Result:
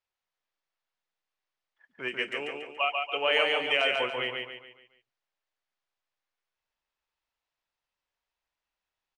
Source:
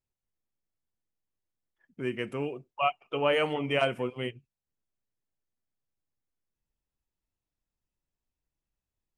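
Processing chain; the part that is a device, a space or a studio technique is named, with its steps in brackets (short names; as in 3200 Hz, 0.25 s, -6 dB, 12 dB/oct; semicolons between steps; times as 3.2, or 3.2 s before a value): DJ mixer with the lows and highs turned down (three-band isolator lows -21 dB, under 580 Hz, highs -23 dB, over 5200 Hz; limiter -19.5 dBFS, peak gain reduction 5.5 dB); 2.08–3.93 ten-band EQ 125 Hz -8 dB, 1000 Hz -9 dB, 8000 Hz +10 dB; feedback echo 0.142 s, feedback 41%, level -3.5 dB; gain +7.5 dB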